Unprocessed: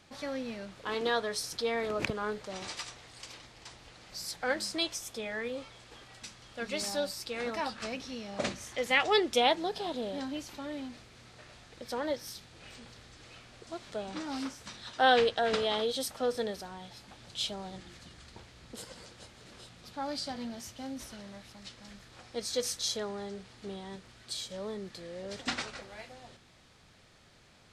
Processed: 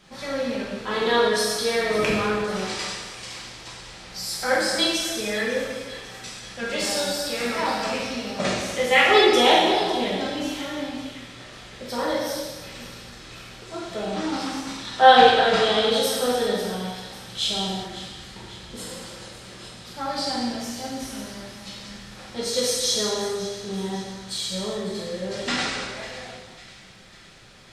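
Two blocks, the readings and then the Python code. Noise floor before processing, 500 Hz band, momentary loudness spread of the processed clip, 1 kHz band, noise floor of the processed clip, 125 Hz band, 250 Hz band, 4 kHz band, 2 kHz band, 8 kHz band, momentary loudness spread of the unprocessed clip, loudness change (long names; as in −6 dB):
−60 dBFS, +10.0 dB, 21 LU, +12.5 dB, −44 dBFS, +11.5 dB, +10.5 dB, +11.5 dB, +10.5 dB, +10.5 dB, 23 LU, +10.5 dB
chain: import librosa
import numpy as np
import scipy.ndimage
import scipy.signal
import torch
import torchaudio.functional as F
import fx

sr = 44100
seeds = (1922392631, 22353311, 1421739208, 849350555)

y = fx.echo_split(x, sr, split_hz=1600.0, low_ms=172, high_ms=548, feedback_pct=52, wet_db=-14.5)
y = fx.rev_gated(y, sr, seeds[0], gate_ms=430, shape='falling', drr_db=-7.5)
y = F.gain(torch.from_numpy(y), 2.5).numpy()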